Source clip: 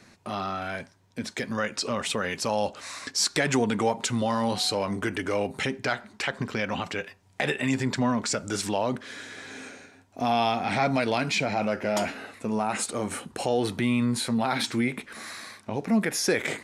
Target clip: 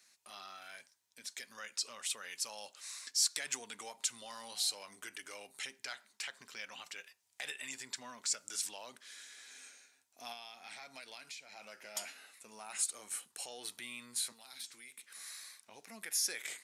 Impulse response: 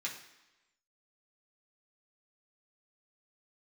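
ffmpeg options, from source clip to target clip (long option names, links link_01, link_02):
-filter_complex "[0:a]asettb=1/sr,asplit=3[link_01][link_02][link_03];[link_01]atrim=end=14.324[link_04];[link_02]atrim=start=14.32:end=15.03,asetpts=PTS-STARTPTS,afade=type=in:duration=0.004:curve=qsin,afade=type=out:start_time=0.706:duration=0.004:curve=qsin,acrossover=split=420|3900[link_05][link_06][link_07];[link_05]acompressor=threshold=-39dB:ratio=4[link_08];[link_06]acompressor=threshold=-41dB:ratio=4[link_09];[link_07]acompressor=threshold=-42dB:ratio=4[link_10];[link_08][link_09][link_10]amix=inputs=3:normalize=0[link_11];[link_03]atrim=start=15.026[link_12];[link_04][link_11]acrossfade=duration=0.004:curve1=hsin:curve2=qsin[link_13];[link_13][link_12]acrossfade=duration=0.004:curve1=qsin:curve2=hsin,aderivative,asettb=1/sr,asplit=3[link_14][link_15][link_16];[link_14]atrim=end=10.324[link_17];[link_15]atrim=start=10.32:end=11.95,asetpts=PTS-STARTPTS,afade=type=in:duration=0.004:curve=qsin,afade=type=out:start_time=1.626:duration=0.004:curve=qsin,acompressor=threshold=-43dB:ratio=6[link_18];[link_16]atrim=start=11.946[link_19];[link_17][link_18]acrossfade=duration=0.004:curve1=hsin:curve2=qsin[link_20];[link_20][link_19]acrossfade=duration=0.004:curve1=qsin:curve2=hsin,volume=-3.5dB"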